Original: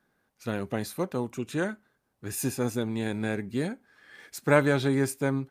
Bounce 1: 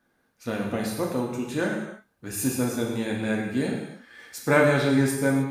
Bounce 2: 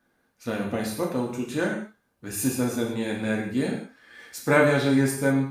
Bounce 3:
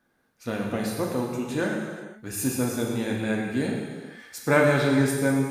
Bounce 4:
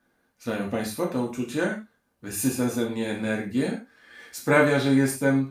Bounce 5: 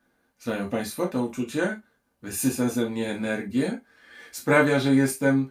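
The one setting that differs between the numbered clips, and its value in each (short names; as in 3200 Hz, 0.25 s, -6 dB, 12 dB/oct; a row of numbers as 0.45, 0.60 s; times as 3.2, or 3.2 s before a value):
non-linear reverb, gate: 340, 220, 530, 140, 90 ms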